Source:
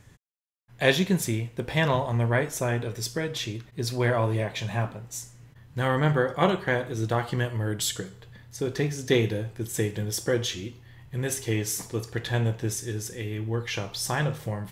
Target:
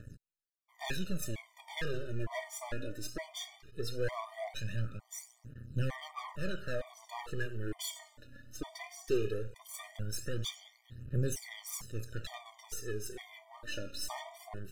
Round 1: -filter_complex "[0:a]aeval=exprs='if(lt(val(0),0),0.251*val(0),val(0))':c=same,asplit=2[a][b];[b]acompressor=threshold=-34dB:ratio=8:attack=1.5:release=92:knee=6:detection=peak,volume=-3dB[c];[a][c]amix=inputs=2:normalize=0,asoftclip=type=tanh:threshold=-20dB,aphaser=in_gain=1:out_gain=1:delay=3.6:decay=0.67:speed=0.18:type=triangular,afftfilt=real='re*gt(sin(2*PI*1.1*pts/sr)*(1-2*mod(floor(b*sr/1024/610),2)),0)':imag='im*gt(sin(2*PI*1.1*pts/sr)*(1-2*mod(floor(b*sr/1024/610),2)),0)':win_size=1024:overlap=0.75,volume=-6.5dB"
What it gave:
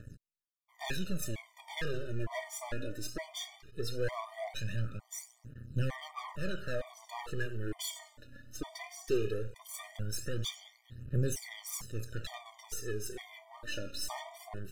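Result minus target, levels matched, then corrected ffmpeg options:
compressor: peak gain reduction -9.5 dB
-filter_complex "[0:a]aeval=exprs='if(lt(val(0),0),0.251*val(0),val(0))':c=same,asplit=2[a][b];[b]acompressor=threshold=-45dB:ratio=8:attack=1.5:release=92:knee=6:detection=peak,volume=-3dB[c];[a][c]amix=inputs=2:normalize=0,asoftclip=type=tanh:threshold=-20dB,aphaser=in_gain=1:out_gain=1:delay=3.6:decay=0.67:speed=0.18:type=triangular,afftfilt=real='re*gt(sin(2*PI*1.1*pts/sr)*(1-2*mod(floor(b*sr/1024/610),2)),0)':imag='im*gt(sin(2*PI*1.1*pts/sr)*(1-2*mod(floor(b*sr/1024/610),2)),0)':win_size=1024:overlap=0.75,volume=-6.5dB"

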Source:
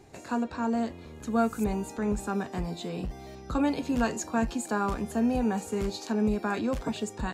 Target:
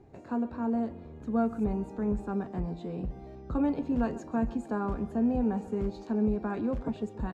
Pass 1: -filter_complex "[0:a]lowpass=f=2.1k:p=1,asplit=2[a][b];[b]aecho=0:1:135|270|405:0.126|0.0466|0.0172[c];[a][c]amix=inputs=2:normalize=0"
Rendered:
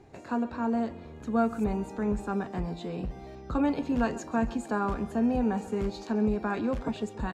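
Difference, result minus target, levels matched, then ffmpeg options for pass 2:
2000 Hz band +6.5 dB
-filter_complex "[0:a]lowpass=f=550:p=1,asplit=2[a][b];[b]aecho=0:1:135|270|405:0.126|0.0466|0.0172[c];[a][c]amix=inputs=2:normalize=0"

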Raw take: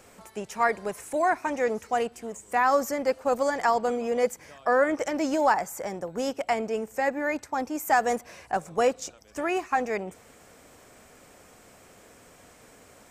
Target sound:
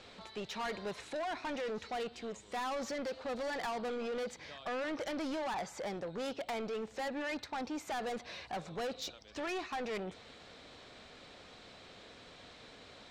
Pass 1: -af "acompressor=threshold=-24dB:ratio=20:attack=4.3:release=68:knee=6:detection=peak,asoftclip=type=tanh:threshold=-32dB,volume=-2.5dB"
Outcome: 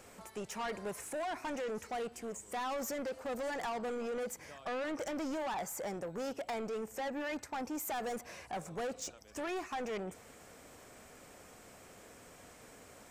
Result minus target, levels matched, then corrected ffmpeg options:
4000 Hz band -4.5 dB
-af "acompressor=threshold=-24dB:ratio=20:attack=4.3:release=68:knee=6:detection=peak,lowpass=f=3.9k:t=q:w=5.3,asoftclip=type=tanh:threshold=-32dB,volume=-2.5dB"

